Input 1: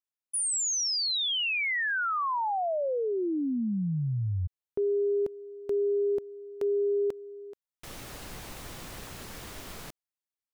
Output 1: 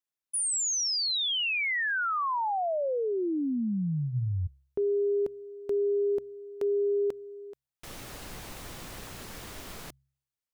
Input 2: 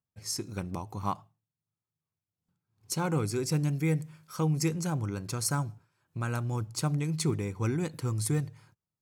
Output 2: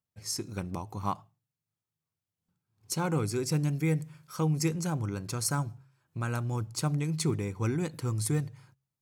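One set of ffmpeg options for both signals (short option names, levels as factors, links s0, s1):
-af "bandreject=f=67.14:t=h:w=4,bandreject=f=134.28:t=h:w=4"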